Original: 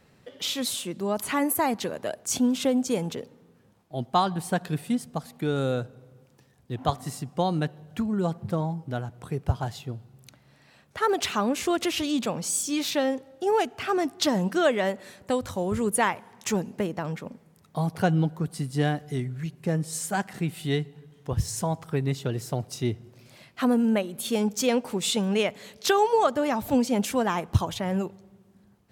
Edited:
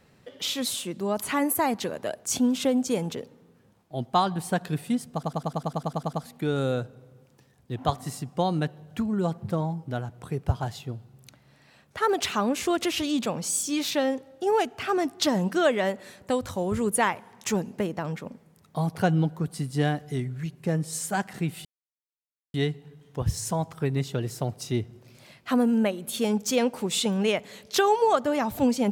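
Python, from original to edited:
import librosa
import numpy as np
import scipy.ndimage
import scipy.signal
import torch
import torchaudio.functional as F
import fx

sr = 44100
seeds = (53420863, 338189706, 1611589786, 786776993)

y = fx.edit(x, sr, fx.stutter(start_s=5.13, slice_s=0.1, count=11),
    fx.insert_silence(at_s=20.65, length_s=0.89), tone=tone)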